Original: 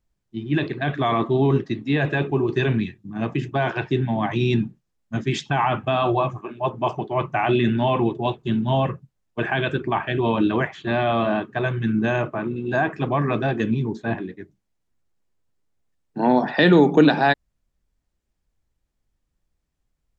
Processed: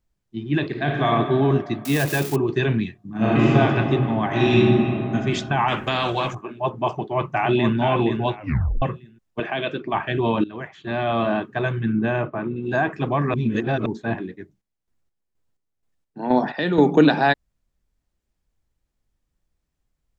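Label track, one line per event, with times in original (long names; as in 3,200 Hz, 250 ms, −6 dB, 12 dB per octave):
0.670000	1.080000	thrown reverb, RT60 2.4 s, DRR 0.5 dB
1.850000	2.360000	spike at every zero crossing of −18.5 dBFS
3.090000	3.560000	thrown reverb, RT60 3 s, DRR −10 dB
4.260000	5.150000	thrown reverb, RT60 2.2 s, DRR −5.5 dB
5.680000	6.350000	every bin compressed towards the loudest bin 2 to 1
6.890000	7.770000	delay throw 470 ms, feedback 25%, level −6 dB
8.360000	8.360000	tape stop 0.46 s
9.400000	9.940000	loudspeaker in its box 230–5,800 Hz, peaks and dips at 390 Hz −4 dB, 600 Hz +3 dB, 870 Hz −5 dB, 1,600 Hz −7 dB
10.440000	11.230000	fade in, from −20 dB
11.810000	12.630000	high-frequency loss of the air 210 metres
13.340000	13.860000	reverse
14.400000	16.830000	square-wave tremolo 2.1 Hz, depth 60%, duty 45%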